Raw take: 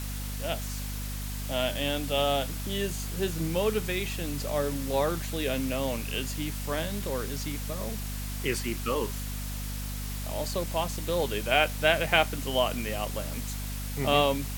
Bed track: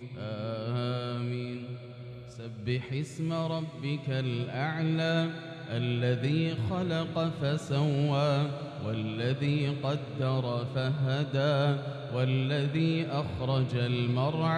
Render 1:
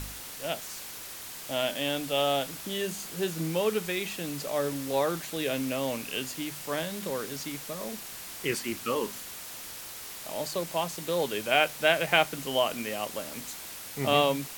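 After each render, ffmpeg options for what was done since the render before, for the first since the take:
-af "bandreject=f=50:t=h:w=4,bandreject=f=100:t=h:w=4,bandreject=f=150:t=h:w=4,bandreject=f=200:t=h:w=4,bandreject=f=250:t=h:w=4"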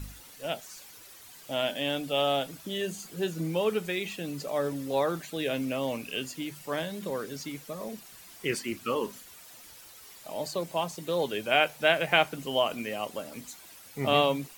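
-af "afftdn=nr=11:nf=-42"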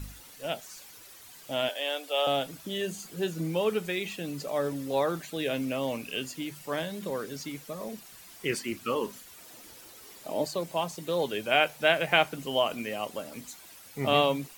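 -filter_complex "[0:a]asettb=1/sr,asplit=3[a][b][c];[a]atrim=end=1.694[d];[b]atrim=start=1.69:end=2.27,asetpts=PTS-STARTPTS,afade=t=in:d=0.004:c=qsin,afade=t=out:st=0.576:d=0.004:c=qsin,highpass=f=430:w=0.5412,highpass=f=430:w=1.3066[e];[c]atrim=start=2.266[f];[d][e]acrossfade=d=0.004:c1=hsin:c2=qsin[g];[g][f]acrossfade=d=0.004:c1=qsin:c2=hsin,asettb=1/sr,asplit=3[h][i][j];[h]atrim=end=9.384[k];[i]atrim=start=9.38:end=10.45,asetpts=PTS-STARTPTS,afade=t=in:d=0.004:c=qsin,afade=t=out:st=1.066:d=0.004:c=qsin,equalizer=f=330:w=0.79:g=9[l];[j]atrim=start=10.446[m];[k][l]acrossfade=d=0.004:c1=hsin:c2=qsin[n];[n][m]acrossfade=d=0.004:c1=qsin:c2=hsin"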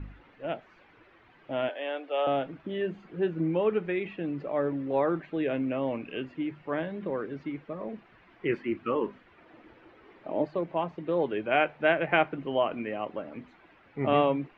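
-af "lowpass=f=2.3k:w=0.5412,lowpass=f=2.3k:w=1.3066,equalizer=f=330:w=3.3:g=6.5"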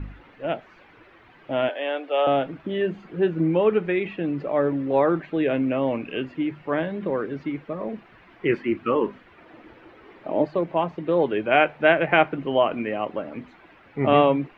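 -af "volume=6.5dB,alimiter=limit=-3dB:level=0:latency=1"

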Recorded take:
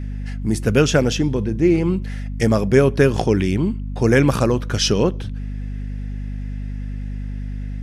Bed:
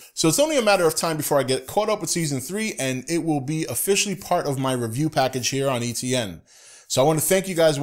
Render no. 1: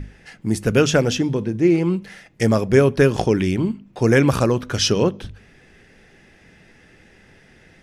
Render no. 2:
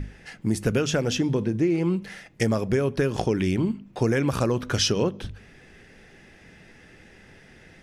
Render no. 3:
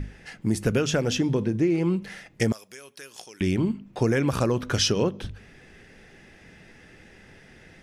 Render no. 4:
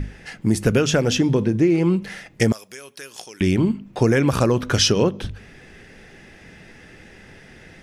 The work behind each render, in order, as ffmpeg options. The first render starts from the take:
-af "bandreject=f=50:t=h:w=6,bandreject=f=100:t=h:w=6,bandreject=f=150:t=h:w=6,bandreject=f=200:t=h:w=6,bandreject=f=250:t=h:w=6"
-af "alimiter=limit=-8.5dB:level=0:latency=1:release=397,acompressor=threshold=-20dB:ratio=3"
-filter_complex "[0:a]asettb=1/sr,asplit=3[a][b][c];[a]atrim=end=2.524[d];[b]atrim=start=2.52:end=3.41,asetpts=PTS-STARTPTS,afade=t=in:d=0.004:c=qsin,afade=t=out:st=0.886:d=0.004:c=qsin,aderivative[e];[c]atrim=start=3.406[f];[d][e]acrossfade=d=0.004:c1=hsin:c2=qsin[g];[g][f]acrossfade=d=0.004:c1=qsin:c2=hsin"
-af "volume=5.5dB"

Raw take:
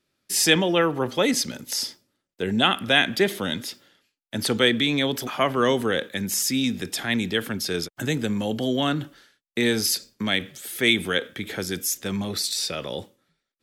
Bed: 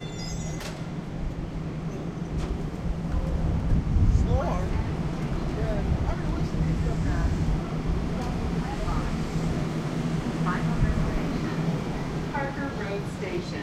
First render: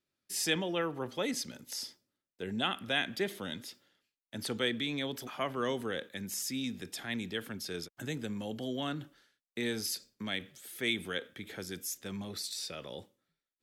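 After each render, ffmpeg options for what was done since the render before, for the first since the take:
-af "volume=-12.5dB"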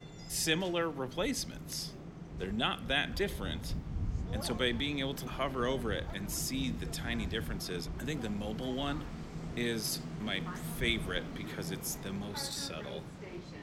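-filter_complex "[1:a]volume=-14.5dB[a];[0:a][a]amix=inputs=2:normalize=0"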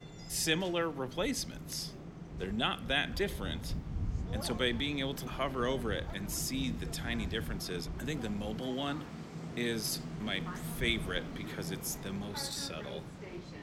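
-filter_complex "[0:a]asettb=1/sr,asplit=3[a][b][c];[a]atrim=end=8.594[d];[b]atrim=start=8.59:end=9.69,asetpts=PTS-STARTPTS,afade=t=in:d=0.004:c=qsin,afade=t=out:st=1.096:d=0.004:c=qsin,highpass=110[e];[c]atrim=start=9.686[f];[d][e]acrossfade=d=0.004:c1=hsin:c2=qsin[g];[g][f]acrossfade=d=0.004:c1=qsin:c2=hsin"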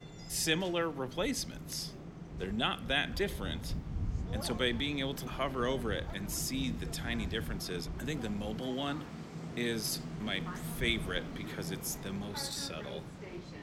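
-af anull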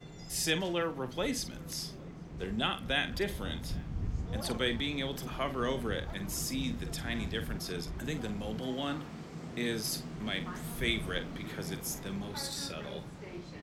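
-filter_complex "[0:a]asplit=2[a][b];[b]adelay=46,volume=-11.5dB[c];[a][c]amix=inputs=2:normalize=0,asplit=2[d][e];[e]adelay=816.3,volume=-24dB,highshelf=f=4k:g=-18.4[f];[d][f]amix=inputs=2:normalize=0"

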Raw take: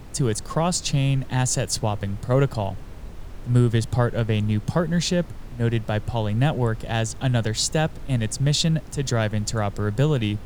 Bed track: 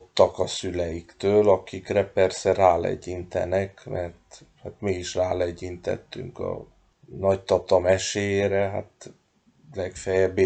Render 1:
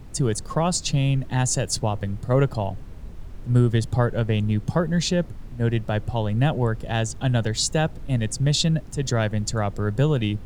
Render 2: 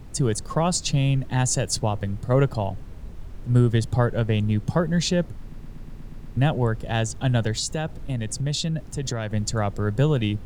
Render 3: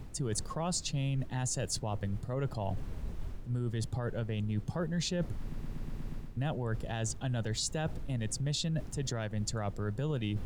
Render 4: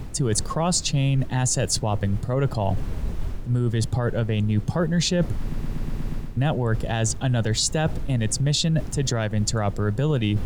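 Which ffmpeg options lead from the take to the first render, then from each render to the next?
-af "afftdn=nr=6:nf=-38"
-filter_complex "[0:a]asettb=1/sr,asplit=3[a][b][c];[a]atrim=end=7.554[d];[b]atrim=start=7.55:end=9.32,asetpts=PTS-STARTPTS,afade=t=in:d=0.004:c=qsin,afade=t=out:st=1.766:d=0.004:c=qsin,acompressor=threshold=-23dB:ratio=4:attack=3.2:release=140:knee=1:detection=peak[e];[c]atrim=start=9.316[f];[d][e]acrossfade=d=0.004:c1=hsin:c2=qsin[g];[g][f]acrossfade=d=0.004:c1=qsin:c2=hsin,asplit=9[h][i][j][k][l][m][n][o][p];[h]atrim=end=5.532[q];[i]atrim=start=5.408:end=5.532[r];[j]atrim=start=5.408:end=5.532[s];[k]atrim=start=5.408:end=5.532[t];[l]atrim=start=5.408:end=5.532[u];[m]atrim=start=5.408:end=5.532[v];[n]atrim=start=5.408:end=5.532[w];[o]atrim=start=5.408:end=5.532[x];[p]atrim=start=6.368[y];[q][r]acrossfade=d=0.004:c1=hsin:c2=hsin[z];[z][s]acrossfade=d=0.004:c1=hsin:c2=hsin[aa];[aa][t]acrossfade=d=0.004:c1=hsin:c2=hsin[ab];[ab][u]acrossfade=d=0.004:c1=hsin:c2=hsin[ac];[ac][v]acrossfade=d=0.004:c1=hsin:c2=hsin[ad];[ad][w]acrossfade=d=0.004:c1=hsin:c2=hsin[ae];[ae][x]acrossfade=d=0.004:c1=hsin:c2=hsin[af];[af][y]acrossfade=d=0.004:c1=hsin:c2=hsin"
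-af "alimiter=limit=-14.5dB:level=0:latency=1,areverse,acompressor=threshold=-31dB:ratio=6,areverse"
-af "volume=11.5dB"

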